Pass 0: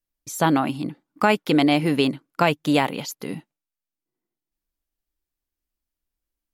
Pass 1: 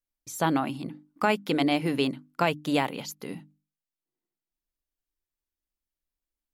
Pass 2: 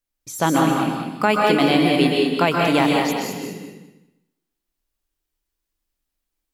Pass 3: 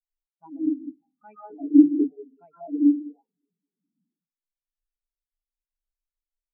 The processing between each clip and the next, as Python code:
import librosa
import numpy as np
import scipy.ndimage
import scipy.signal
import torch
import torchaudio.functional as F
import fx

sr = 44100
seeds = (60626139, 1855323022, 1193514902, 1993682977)

y1 = fx.hum_notches(x, sr, base_hz=50, count=6)
y1 = F.gain(torch.from_numpy(y1), -5.5).numpy()
y2 = fx.echo_feedback(y1, sr, ms=202, feedback_pct=19, wet_db=-7)
y2 = fx.rev_plate(y2, sr, seeds[0], rt60_s=0.81, hf_ratio=0.95, predelay_ms=115, drr_db=0.0)
y2 = F.gain(torch.from_numpy(y2), 5.5).numpy()
y3 = y2 + 0.5 * 10.0 ** (-21.5 / 20.0) * np.sign(y2)
y3 = fx.filter_lfo_lowpass(y3, sr, shape='sine', hz=0.94, low_hz=270.0, high_hz=2400.0, q=2.1)
y3 = fx.spectral_expand(y3, sr, expansion=4.0)
y3 = F.gain(torch.from_numpy(y3), -3.5).numpy()